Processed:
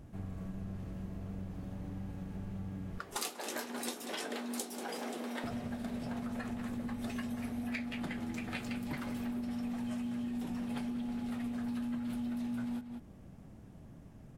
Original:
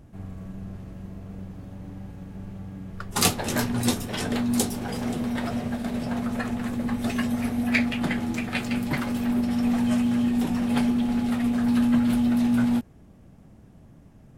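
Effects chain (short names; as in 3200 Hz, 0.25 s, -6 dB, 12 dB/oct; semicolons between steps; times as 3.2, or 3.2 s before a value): 2.98–5.44 HPF 300 Hz 24 dB/oct; outdoor echo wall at 32 m, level -14 dB; compressor 6:1, threshold -34 dBFS, peak gain reduction 16.5 dB; gain -2.5 dB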